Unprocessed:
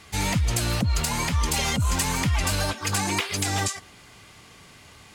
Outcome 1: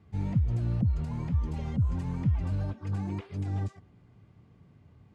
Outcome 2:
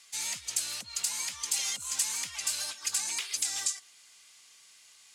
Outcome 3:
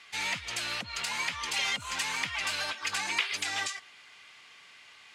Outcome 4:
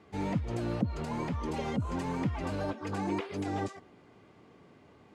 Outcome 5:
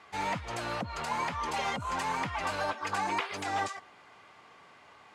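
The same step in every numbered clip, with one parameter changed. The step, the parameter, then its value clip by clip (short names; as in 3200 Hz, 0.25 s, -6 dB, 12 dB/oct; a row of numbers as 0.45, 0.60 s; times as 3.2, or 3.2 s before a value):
band-pass, frequency: 120, 7500, 2500, 340, 930 Hz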